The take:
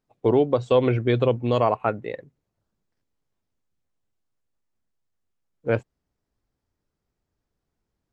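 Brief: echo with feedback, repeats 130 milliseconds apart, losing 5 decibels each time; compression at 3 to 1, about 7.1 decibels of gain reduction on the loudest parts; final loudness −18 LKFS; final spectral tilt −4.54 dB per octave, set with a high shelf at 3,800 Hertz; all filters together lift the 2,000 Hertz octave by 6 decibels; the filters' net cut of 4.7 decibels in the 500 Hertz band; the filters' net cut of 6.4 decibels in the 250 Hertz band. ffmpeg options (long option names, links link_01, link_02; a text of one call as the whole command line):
ffmpeg -i in.wav -af "equalizer=frequency=250:width_type=o:gain=-7,equalizer=frequency=500:width_type=o:gain=-4,equalizer=frequency=2000:width_type=o:gain=6.5,highshelf=frequency=3800:gain=6.5,acompressor=threshold=-27dB:ratio=3,aecho=1:1:130|260|390|520|650|780|910:0.562|0.315|0.176|0.0988|0.0553|0.031|0.0173,volume=12.5dB" out.wav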